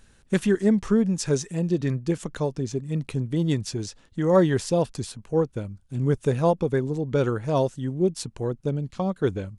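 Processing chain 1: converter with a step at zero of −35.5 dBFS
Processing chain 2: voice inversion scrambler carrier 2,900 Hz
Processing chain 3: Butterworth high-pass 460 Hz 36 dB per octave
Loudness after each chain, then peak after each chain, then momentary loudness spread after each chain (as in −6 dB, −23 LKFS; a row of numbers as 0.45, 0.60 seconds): −24.5, −21.5, −31.0 LKFS; −7.5, −6.5, −8.5 dBFS; 8, 9, 15 LU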